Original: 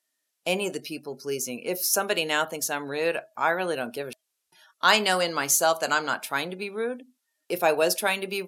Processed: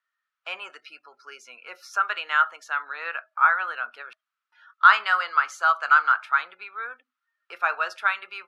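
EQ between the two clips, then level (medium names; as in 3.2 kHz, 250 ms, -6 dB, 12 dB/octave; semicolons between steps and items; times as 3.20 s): resonant high-pass 1.3 kHz, resonance Q 6.6; low-pass 2.7 kHz 12 dB/octave; -3.5 dB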